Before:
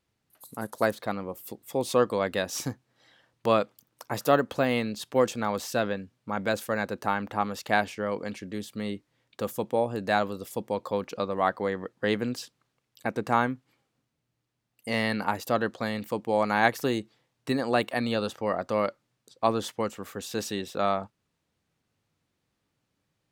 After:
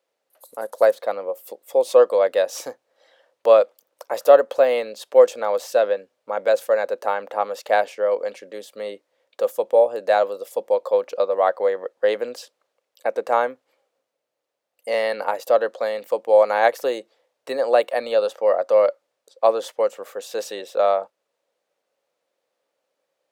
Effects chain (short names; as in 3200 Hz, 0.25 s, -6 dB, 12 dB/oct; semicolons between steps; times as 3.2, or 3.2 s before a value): resonant high-pass 540 Hz, resonance Q 4.9